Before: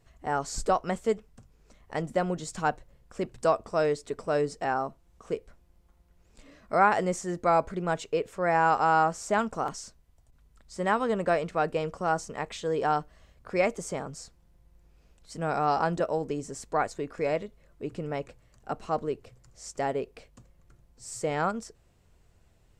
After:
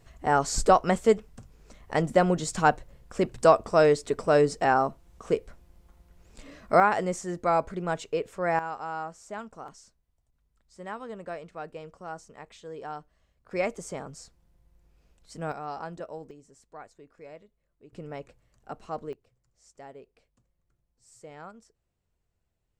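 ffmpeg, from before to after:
-af "asetnsamples=n=441:p=0,asendcmd='6.8 volume volume -1dB;8.59 volume volume -12dB;13.51 volume volume -3dB;15.52 volume volume -11dB;16.31 volume volume -18dB;17.93 volume volume -6dB;19.13 volume volume -16.5dB',volume=2"

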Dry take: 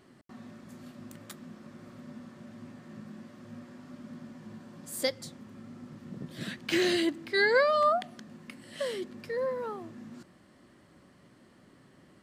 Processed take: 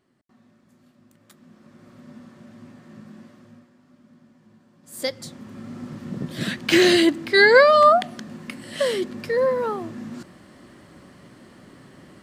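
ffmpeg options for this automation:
-af "volume=11.9,afade=t=in:st=1.17:d=0.98:silence=0.251189,afade=t=out:st=3.25:d=0.45:silence=0.298538,afade=t=in:st=4.82:d=0.26:silence=0.251189,afade=t=in:st=5.08:d=0.74:silence=0.421697"

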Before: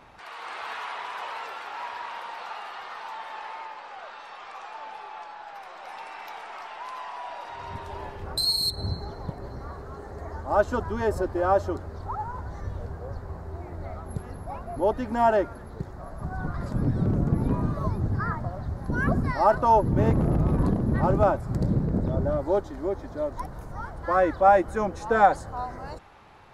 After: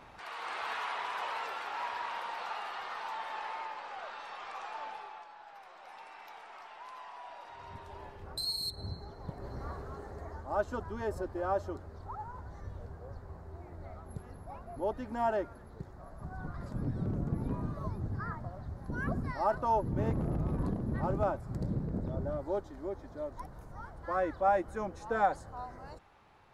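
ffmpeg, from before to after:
-af "volume=2,afade=t=out:st=4.82:d=0.43:silence=0.375837,afade=t=in:st=9.17:d=0.51:silence=0.398107,afade=t=out:st=9.68:d=0.85:silence=0.421697"

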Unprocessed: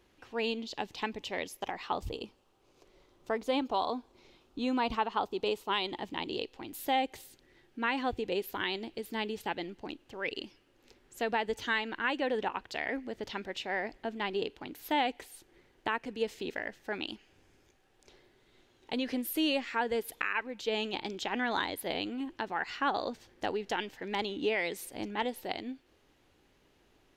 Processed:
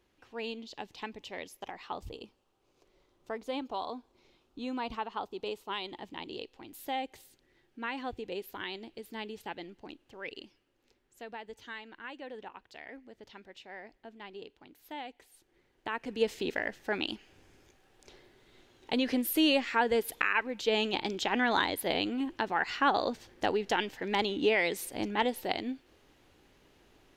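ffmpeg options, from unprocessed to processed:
-af "volume=3.55,afade=t=out:st=10.15:d=1.08:silence=0.446684,afade=t=in:st=15.18:d=0.71:silence=0.398107,afade=t=in:st=15.89:d=0.34:silence=0.375837"

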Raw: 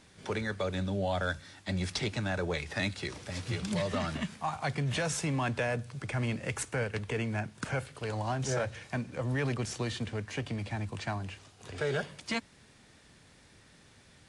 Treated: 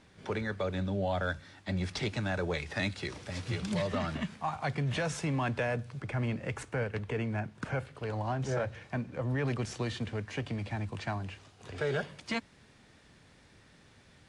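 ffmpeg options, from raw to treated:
-af "asetnsamples=n=441:p=0,asendcmd='1.97 lowpass f 5900;3.87 lowpass f 3500;6 lowpass f 2000;9.47 lowpass f 4400',lowpass=f=2900:p=1"

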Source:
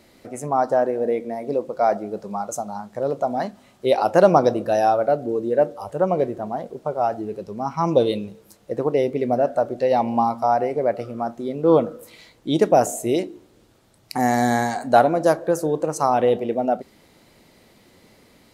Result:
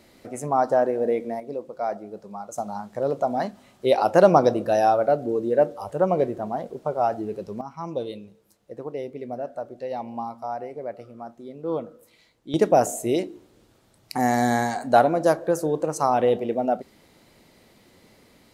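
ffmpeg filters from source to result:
-af "asetnsamples=n=441:p=0,asendcmd='1.4 volume volume -8.5dB;2.58 volume volume -1dB;7.61 volume volume -12dB;12.54 volume volume -2dB',volume=0.891"

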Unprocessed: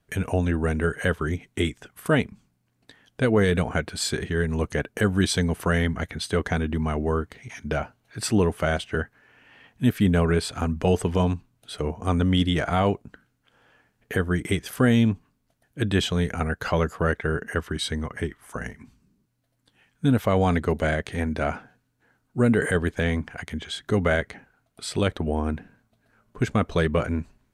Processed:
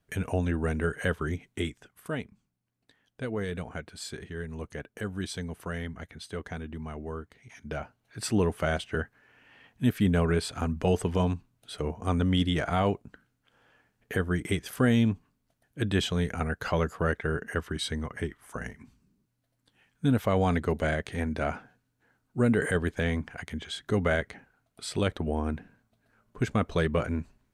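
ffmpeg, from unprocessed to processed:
-af "volume=1.58,afade=t=out:st=1.3:d=0.82:silence=0.398107,afade=t=in:st=7.36:d=1.12:silence=0.375837"

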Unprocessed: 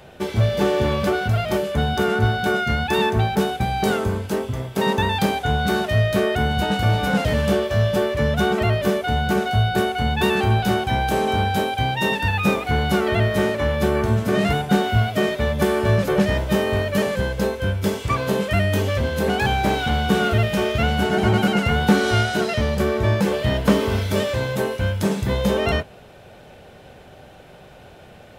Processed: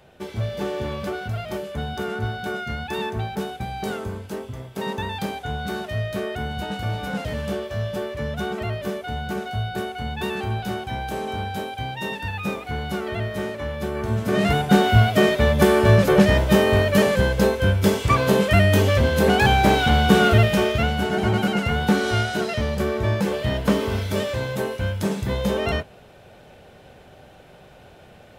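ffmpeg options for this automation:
-af "volume=1.5,afade=t=in:st=13.94:d=0.97:silence=0.266073,afade=t=out:st=20.37:d=0.57:silence=0.473151"

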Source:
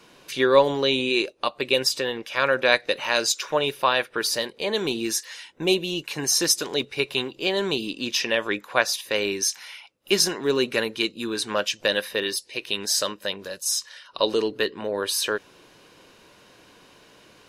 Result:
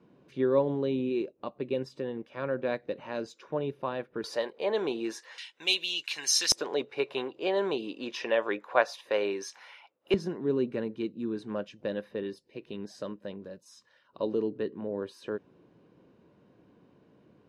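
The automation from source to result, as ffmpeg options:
-af "asetnsamples=n=441:p=0,asendcmd='4.24 bandpass f 670;5.38 bandpass f 3400;6.52 bandpass f 660;10.14 bandpass f 180',bandpass=f=180:t=q:w=0.93:csg=0"

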